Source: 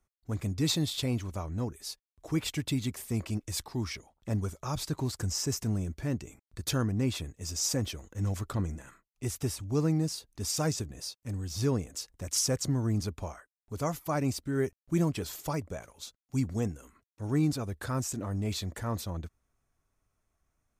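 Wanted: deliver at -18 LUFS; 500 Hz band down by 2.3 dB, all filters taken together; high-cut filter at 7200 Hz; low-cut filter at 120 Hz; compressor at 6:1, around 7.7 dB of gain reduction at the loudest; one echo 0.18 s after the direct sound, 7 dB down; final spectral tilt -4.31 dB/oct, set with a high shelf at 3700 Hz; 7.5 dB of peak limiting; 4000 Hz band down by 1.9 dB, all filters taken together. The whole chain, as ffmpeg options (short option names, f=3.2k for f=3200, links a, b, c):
-af "highpass=120,lowpass=7.2k,equalizer=f=500:t=o:g=-3,highshelf=f=3.7k:g=6.5,equalizer=f=4k:t=o:g=-7,acompressor=threshold=-33dB:ratio=6,alimiter=level_in=6dB:limit=-24dB:level=0:latency=1,volume=-6dB,aecho=1:1:180:0.447,volume=22.5dB"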